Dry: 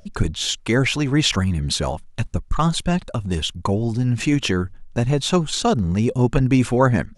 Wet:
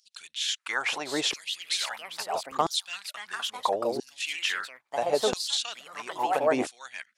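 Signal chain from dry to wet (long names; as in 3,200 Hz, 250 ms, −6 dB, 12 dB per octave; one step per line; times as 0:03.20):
delay with pitch and tempo change per echo 751 ms, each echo +3 semitones, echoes 2, each echo −6 dB
dynamic equaliser 760 Hz, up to +5 dB, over −34 dBFS, Q 1.7
auto-filter high-pass saw down 0.75 Hz 370–4,800 Hz
level −8 dB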